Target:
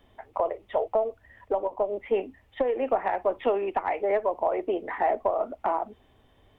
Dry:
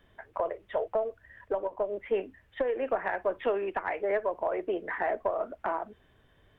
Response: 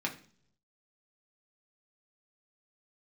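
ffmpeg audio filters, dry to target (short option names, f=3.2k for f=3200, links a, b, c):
-af "equalizer=f=160:t=o:w=0.33:g=-7,equalizer=f=250:t=o:w=0.33:g=4,equalizer=f=800:t=o:w=0.33:g=6,equalizer=f=1.6k:t=o:w=0.33:g=-10,volume=3dB"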